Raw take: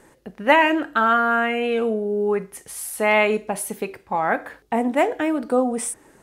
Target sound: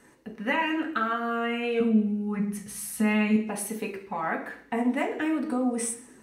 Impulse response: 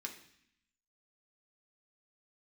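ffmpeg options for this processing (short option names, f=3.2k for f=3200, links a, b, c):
-filter_complex "[0:a]asettb=1/sr,asplit=3[a][b][c];[a]atrim=end=1.804[d];[b]atrim=start=1.8:end=3.36,asetpts=PTS-STARTPTS,afade=t=in:d=0.004:c=qsin,afade=t=out:st=1.556:d=0.004:c=qsin,lowshelf=f=270:t=q:w=3:g=7[e];[c]atrim=start=3.356[f];[d][e]acrossfade=d=0.004:c1=hsin:c2=qsin[g];[g][f]acrossfade=d=0.004:c1=qsin:c2=hsin,acompressor=threshold=-20dB:ratio=4[h];[1:a]atrim=start_sample=2205,asetrate=48510,aresample=44100[i];[h][i]afir=irnorm=-1:irlink=0"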